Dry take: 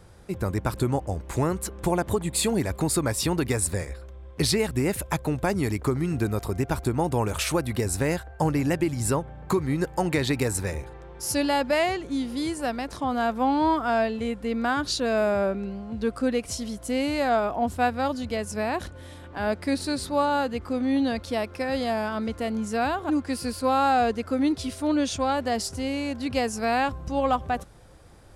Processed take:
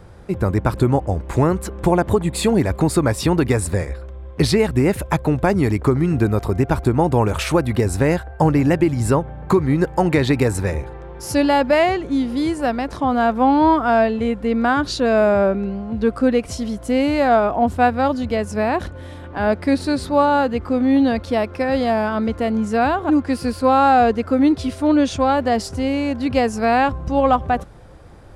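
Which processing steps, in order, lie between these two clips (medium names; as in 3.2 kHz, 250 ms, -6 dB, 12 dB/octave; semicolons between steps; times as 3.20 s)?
peaking EQ 13 kHz -11 dB 2.5 oct; trim +8.5 dB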